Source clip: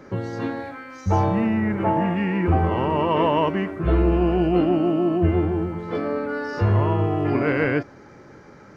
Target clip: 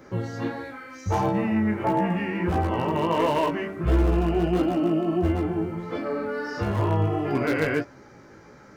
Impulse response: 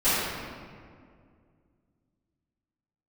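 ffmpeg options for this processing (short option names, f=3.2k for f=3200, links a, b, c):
-af "highshelf=f=2.4k:g=-10.5,bandreject=f=195.1:t=h:w=4,bandreject=f=390.2:t=h:w=4,bandreject=f=585.3:t=h:w=4,bandreject=f=780.4:t=h:w=4,bandreject=f=975.5:t=h:w=4,bandreject=f=1.1706k:t=h:w=4,bandreject=f=1.3657k:t=h:w=4,volume=13dB,asoftclip=hard,volume=-13dB,flanger=delay=15:depth=3.9:speed=1.5,crystalizer=i=5:c=0"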